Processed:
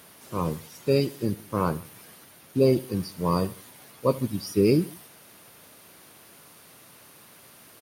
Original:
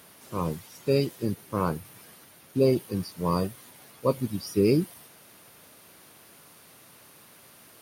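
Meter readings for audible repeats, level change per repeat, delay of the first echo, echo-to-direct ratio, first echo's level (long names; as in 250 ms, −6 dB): 2, −5.0 dB, 76 ms, −19.0 dB, −20.0 dB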